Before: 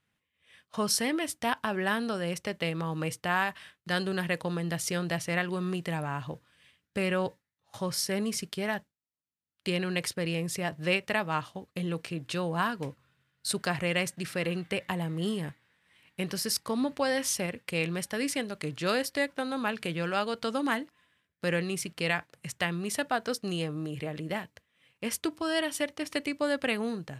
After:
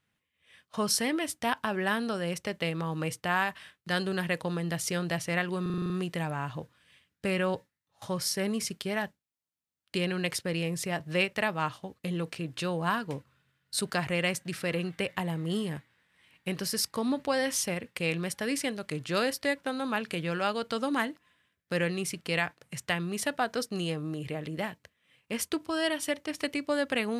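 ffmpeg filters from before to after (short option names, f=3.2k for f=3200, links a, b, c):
-filter_complex "[0:a]asplit=8[a][b][c][d][e][f][g][h];[a]atrim=end=5.662[i];[b]atrim=start=5.618:end=5.662[j];[c]atrim=start=5.618:end=5.662[k];[d]atrim=start=5.618:end=5.662[l];[e]atrim=start=5.618:end=5.662[m];[f]atrim=start=5.618:end=5.662[n];[g]atrim=start=5.618:end=5.662[o];[h]atrim=start=5.618[p];[i][j]acrossfade=d=0.004:c1=hsin:c2=hsin[q];[q][k]acrossfade=d=0.004:c1=hsin:c2=hsin[r];[r][l]acrossfade=d=0.004:c1=hsin:c2=hsin[s];[s][m]acrossfade=d=0.004:c1=hsin:c2=hsin[t];[t][n]acrossfade=d=0.004:c1=hsin:c2=hsin[u];[u][o]acrossfade=d=0.004:c1=hsin:c2=hsin[v];[v][p]acrossfade=d=0.004:c1=hsin:c2=hsin"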